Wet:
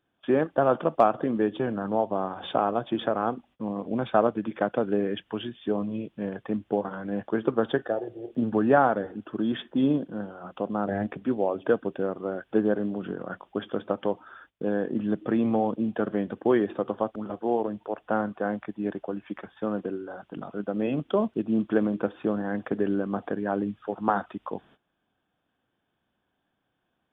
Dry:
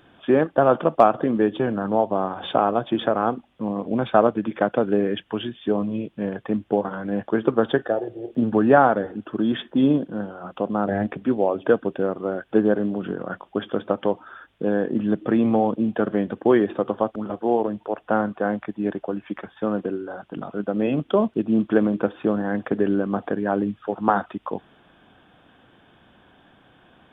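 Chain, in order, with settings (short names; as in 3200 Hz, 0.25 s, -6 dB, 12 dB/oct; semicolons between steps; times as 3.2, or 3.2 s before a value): gate -48 dBFS, range -18 dB; gain -5 dB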